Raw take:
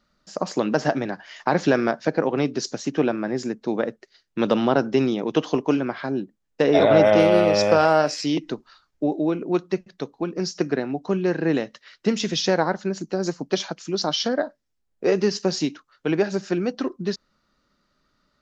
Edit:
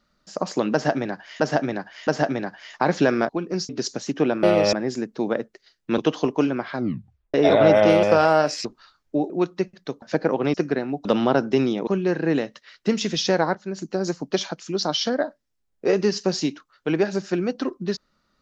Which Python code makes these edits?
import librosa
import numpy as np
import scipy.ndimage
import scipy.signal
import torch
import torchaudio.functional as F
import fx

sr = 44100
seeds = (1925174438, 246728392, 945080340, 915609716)

y = fx.edit(x, sr, fx.repeat(start_s=0.73, length_s=0.67, count=3),
    fx.swap(start_s=1.95, length_s=0.52, other_s=10.15, other_length_s=0.4),
    fx.move(start_s=4.46, length_s=0.82, to_s=11.06),
    fx.tape_stop(start_s=6.06, length_s=0.58),
    fx.move(start_s=7.33, length_s=0.3, to_s=3.21),
    fx.cut(start_s=8.25, length_s=0.28),
    fx.cut(start_s=9.18, length_s=0.25),
    fx.fade_in_from(start_s=12.74, length_s=0.3, floor_db=-14.0), tone=tone)